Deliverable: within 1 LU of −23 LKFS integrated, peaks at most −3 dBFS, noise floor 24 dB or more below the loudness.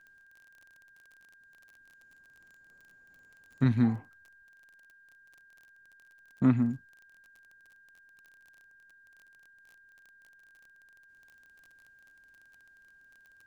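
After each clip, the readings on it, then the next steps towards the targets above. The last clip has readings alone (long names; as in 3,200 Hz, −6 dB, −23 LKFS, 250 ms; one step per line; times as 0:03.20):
crackle rate 30 per second; interfering tone 1,600 Hz; level of the tone −57 dBFS; integrated loudness −28.5 LKFS; sample peak −13.0 dBFS; target loudness −23.0 LKFS
→ click removal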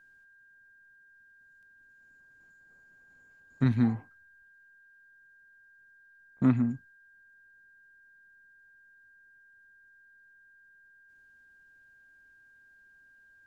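crackle rate 0.074 per second; interfering tone 1,600 Hz; level of the tone −57 dBFS
→ notch filter 1,600 Hz, Q 30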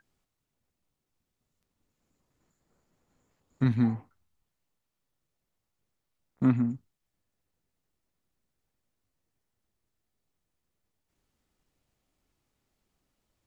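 interfering tone none found; integrated loudness −28.0 LKFS; sample peak −13.0 dBFS; target loudness −23.0 LKFS
→ level +5 dB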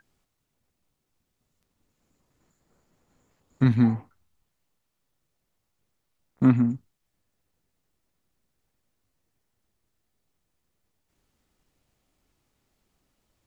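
integrated loudness −23.0 LKFS; sample peak −8.0 dBFS; background noise floor −78 dBFS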